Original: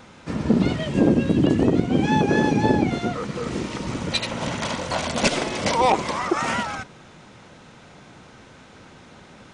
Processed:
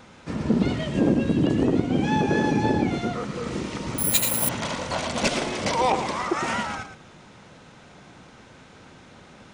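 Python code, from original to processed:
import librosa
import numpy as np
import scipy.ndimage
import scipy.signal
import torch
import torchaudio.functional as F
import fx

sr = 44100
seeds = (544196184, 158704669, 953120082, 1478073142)

p1 = 10.0 ** (-20.5 / 20.0) * np.tanh(x / 10.0 ** (-20.5 / 20.0))
p2 = x + (p1 * librosa.db_to_amplitude(-10.0))
p3 = p2 + 10.0 ** (-9.5 / 20.0) * np.pad(p2, (int(113 * sr / 1000.0), 0))[:len(p2)]
p4 = fx.resample_bad(p3, sr, factor=4, down='none', up='zero_stuff', at=(3.98, 4.49))
y = p4 * librosa.db_to_amplitude(-4.5)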